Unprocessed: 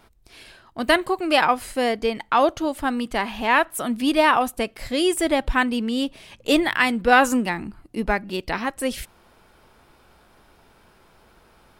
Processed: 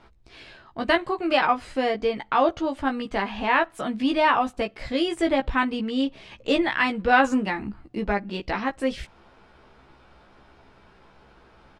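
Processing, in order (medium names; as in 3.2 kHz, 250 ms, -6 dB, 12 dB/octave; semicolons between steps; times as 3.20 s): in parallel at -2.5 dB: compression, threshold -30 dBFS, peak gain reduction 18 dB; on the sum: distance through air 120 m; doubling 15 ms -4 dB; trim -4.5 dB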